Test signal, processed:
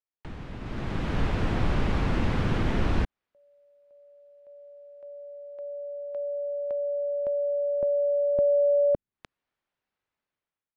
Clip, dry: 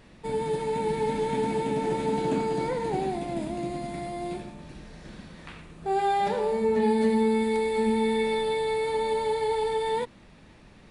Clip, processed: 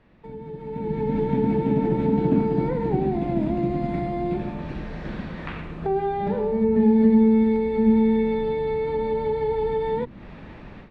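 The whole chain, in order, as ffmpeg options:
-filter_complex "[0:a]acrossover=split=320[a][b];[b]acompressor=threshold=-41dB:ratio=6[c];[a][c]amix=inputs=2:normalize=0,lowpass=2.4k,dynaudnorm=f=600:g=3:m=17dB,volume=-5dB"

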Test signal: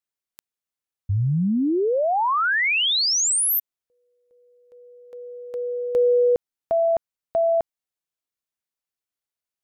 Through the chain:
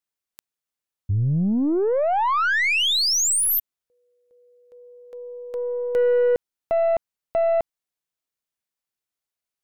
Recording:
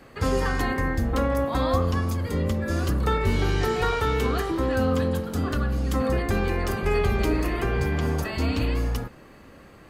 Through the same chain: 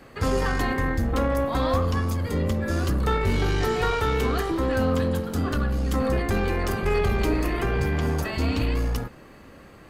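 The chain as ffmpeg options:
-af "aeval=exprs='0.376*(cos(1*acos(clip(val(0)/0.376,-1,1)))-cos(1*PI/2))+0.0188*(cos(6*acos(clip(val(0)/0.376,-1,1)))-cos(6*PI/2))+0.00237*(cos(7*acos(clip(val(0)/0.376,-1,1)))-cos(7*PI/2))':c=same,asoftclip=type=tanh:threshold=-15dB,volume=1.5dB"

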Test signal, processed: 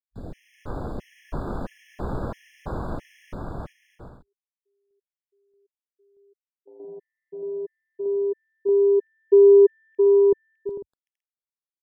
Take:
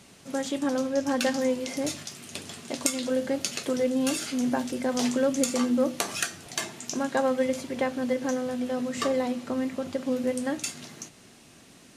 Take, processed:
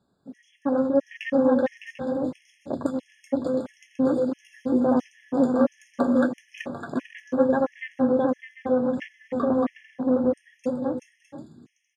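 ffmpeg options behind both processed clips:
-filter_complex "[0:a]lowpass=f=1.7k:p=1,dynaudnorm=f=170:g=7:m=4dB,afwtdn=0.0251,asplit=2[a][b];[b]aecho=0:1:380|608|744.8|826.9|876.1:0.631|0.398|0.251|0.158|0.1[c];[a][c]amix=inputs=2:normalize=0,afftfilt=real='re*gt(sin(2*PI*1.5*pts/sr)*(1-2*mod(floor(b*sr/1024/1700),2)),0)':imag='im*gt(sin(2*PI*1.5*pts/sr)*(1-2*mod(floor(b*sr/1024/1700),2)),0)':win_size=1024:overlap=0.75,volume=1.5dB"

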